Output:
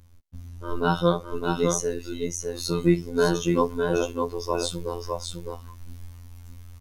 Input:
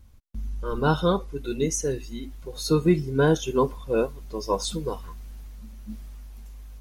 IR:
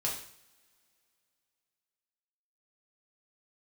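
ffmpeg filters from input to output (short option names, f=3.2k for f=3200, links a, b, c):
-af "asubboost=boost=7:cutoff=57,aecho=1:1:608:0.596,afftfilt=real='hypot(re,im)*cos(PI*b)':imag='0':win_size=2048:overlap=0.75,volume=3dB"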